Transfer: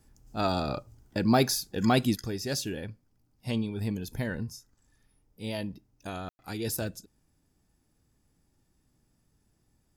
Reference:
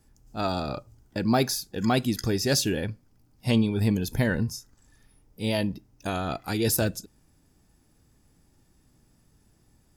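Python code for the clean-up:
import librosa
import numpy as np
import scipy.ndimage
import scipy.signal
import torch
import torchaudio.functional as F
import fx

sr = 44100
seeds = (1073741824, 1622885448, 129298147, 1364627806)

y = fx.fix_ambience(x, sr, seeds[0], print_start_s=7.41, print_end_s=7.91, start_s=6.29, end_s=6.39)
y = fx.gain(y, sr, db=fx.steps((0.0, 0.0), (2.15, 8.0)))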